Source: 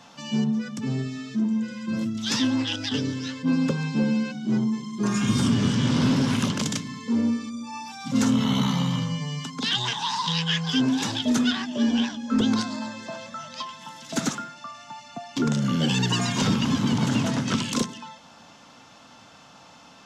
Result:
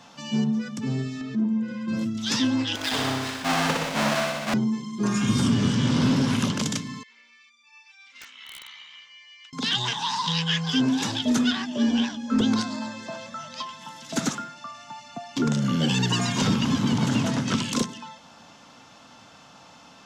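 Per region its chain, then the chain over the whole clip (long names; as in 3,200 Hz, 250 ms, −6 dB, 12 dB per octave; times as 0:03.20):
0:01.21–0:01.88: low-pass filter 1,500 Hz 6 dB per octave + upward compression, threshold −26 dBFS
0:02.75–0:04.54: each half-wave held at its own peak + three-way crossover with the lows and the highs turned down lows −12 dB, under 520 Hz, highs −13 dB, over 7,900 Hz + flutter between parallel walls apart 10.4 metres, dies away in 1 s
0:07.03–0:09.53: four-pole ladder band-pass 2,500 Hz, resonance 55% + wrap-around overflow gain 33 dB
whole clip: no processing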